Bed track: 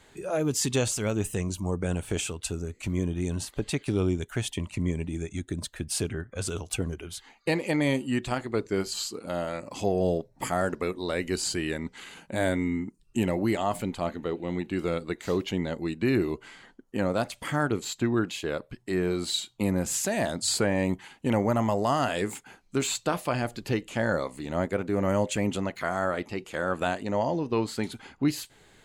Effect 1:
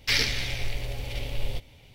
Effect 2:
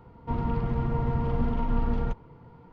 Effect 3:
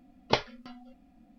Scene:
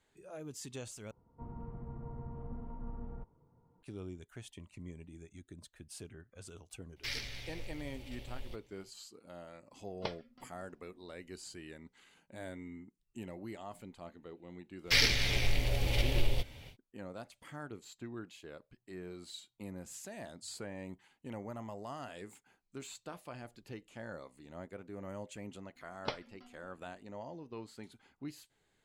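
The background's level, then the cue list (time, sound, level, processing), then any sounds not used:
bed track -19 dB
1.11 s: replace with 2 -17.5 dB + low-pass 1.1 kHz
6.96 s: add 1 -15.5 dB
9.72 s: add 3 -14.5 dB
14.83 s: add 1 -2.5 dB, fades 0.10 s + recorder AGC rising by 9 dB/s
25.75 s: add 3 -12.5 dB

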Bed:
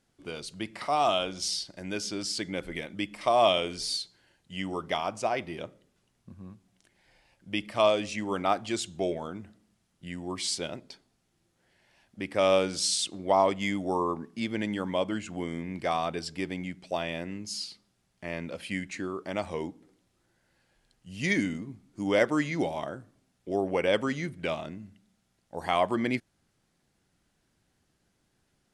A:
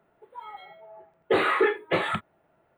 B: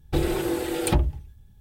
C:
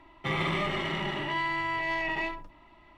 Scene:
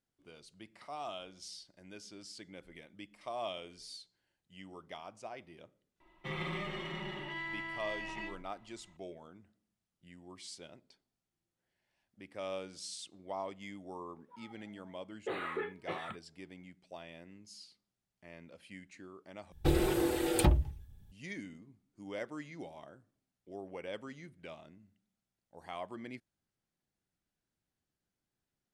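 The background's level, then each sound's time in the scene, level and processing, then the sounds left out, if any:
bed -17 dB
6.00 s: add C -11.5 dB + comb 5.5 ms, depth 60%
13.96 s: add A -16 dB
19.52 s: replace with B -4.5 dB

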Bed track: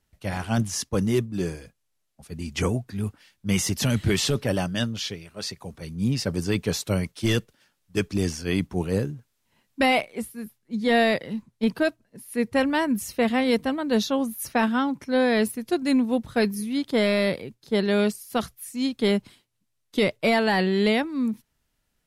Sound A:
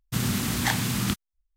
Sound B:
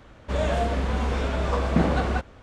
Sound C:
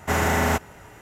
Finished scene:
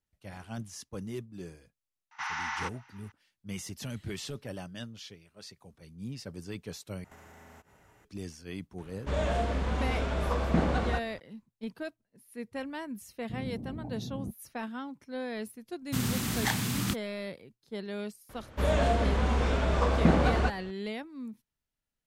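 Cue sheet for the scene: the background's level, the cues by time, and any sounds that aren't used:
bed track -15.5 dB
2.11 s: add C -8.5 dB + Chebyshev band-pass 850–6000 Hz, order 5
7.04 s: replace with C -15.5 dB + compression 8:1, threshold -35 dBFS
8.78 s: add B -5 dB
13.17 s: add A -11 dB + steep low-pass 680 Hz
15.80 s: add A -4.5 dB
18.29 s: add B -1.5 dB

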